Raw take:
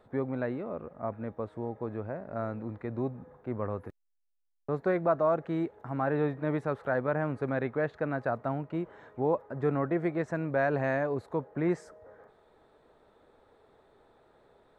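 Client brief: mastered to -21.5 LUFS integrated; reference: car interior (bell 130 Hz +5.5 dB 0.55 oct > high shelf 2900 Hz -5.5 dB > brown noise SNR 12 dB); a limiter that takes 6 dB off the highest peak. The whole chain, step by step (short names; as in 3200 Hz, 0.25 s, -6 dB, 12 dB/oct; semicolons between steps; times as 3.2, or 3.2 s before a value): limiter -20 dBFS; bell 130 Hz +5.5 dB 0.55 oct; high shelf 2900 Hz -5.5 dB; brown noise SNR 12 dB; gain +11 dB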